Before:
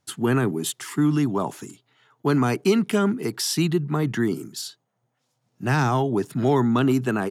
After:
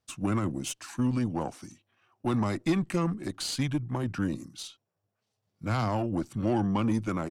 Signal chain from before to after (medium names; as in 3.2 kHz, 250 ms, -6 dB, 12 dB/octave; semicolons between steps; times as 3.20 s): Chebyshev shaper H 2 -25 dB, 6 -25 dB, 7 -37 dB, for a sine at -8.5 dBFS; pitch shift -3 st; trim -7 dB